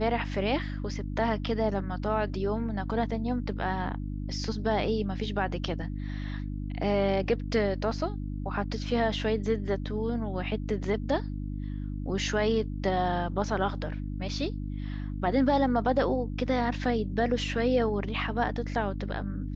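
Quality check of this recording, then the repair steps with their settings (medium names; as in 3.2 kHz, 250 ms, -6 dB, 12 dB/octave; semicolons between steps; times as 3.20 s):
hum 50 Hz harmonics 6 -34 dBFS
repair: de-hum 50 Hz, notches 6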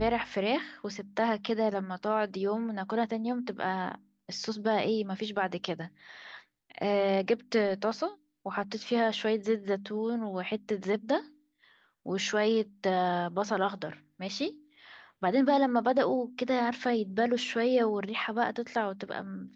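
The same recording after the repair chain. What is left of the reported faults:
nothing left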